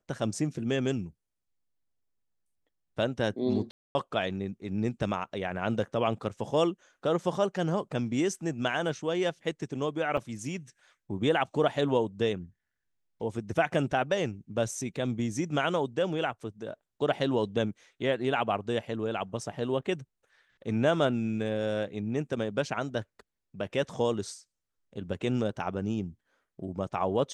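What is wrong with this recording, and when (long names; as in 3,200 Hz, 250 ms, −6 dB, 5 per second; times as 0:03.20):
0:03.71–0:03.95: drop-out 240 ms
0:10.17–0:10.18: drop-out 5.6 ms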